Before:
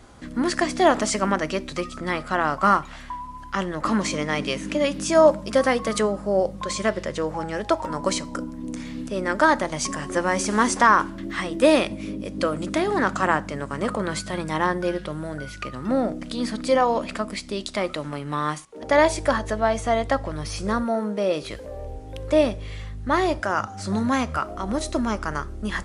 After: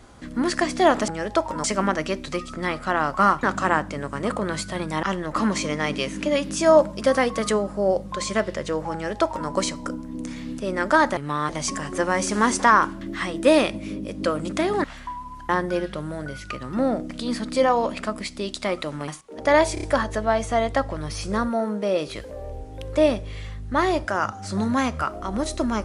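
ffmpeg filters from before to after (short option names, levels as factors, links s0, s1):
-filter_complex "[0:a]asplit=13[s0][s1][s2][s3][s4][s5][s6][s7][s8][s9][s10][s11][s12];[s0]atrim=end=1.082[s13];[s1]atrim=start=7.418:end=7.982[s14];[s2]atrim=start=1.078:end=2.872[s15];[s3]atrim=start=13.008:end=14.612[s16];[s4]atrim=start=3.518:end=9.662[s17];[s5]atrim=start=18.198:end=18.522[s18];[s6]atrim=start=9.658:end=13.012[s19];[s7]atrim=start=2.868:end=3.522[s20];[s8]atrim=start=14.608:end=18.202[s21];[s9]atrim=start=18.518:end=19.212[s22];[s10]atrim=start=19.178:end=19.212[s23];[s11]atrim=start=19.178:end=19.212[s24];[s12]atrim=start=19.178[s25];[s13][s14]acrossfade=d=0.004:c1=hsin:c2=hsin[s26];[s26][s15]acrossfade=d=0.004:c1=hsin:c2=hsin[s27];[s27][s16]acrossfade=d=0.004:c1=hsin:c2=hsin[s28];[s28][s17]acrossfade=d=0.004:c1=hsin:c2=hsin[s29];[s29][s18]acrossfade=d=0.004:c1=hsin:c2=hsin[s30];[s30][s19]acrossfade=d=0.004:c1=hsin:c2=hsin[s31];[s31][s20]acrossfade=d=0.004:c1=hsin:c2=hsin[s32];[s32][s21]acrossfade=d=0.004:c1=hsin:c2=hsin[s33];[s33][s22]acrossfade=d=0.004:c1=hsin:c2=hsin[s34];[s34][s23]acrossfade=d=0.004:c1=hsin:c2=hsin[s35];[s35][s24]acrossfade=d=0.004:c1=hsin:c2=hsin[s36];[s36][s25]acrossfade=d=0.004:c1=hsin:c2=hsin"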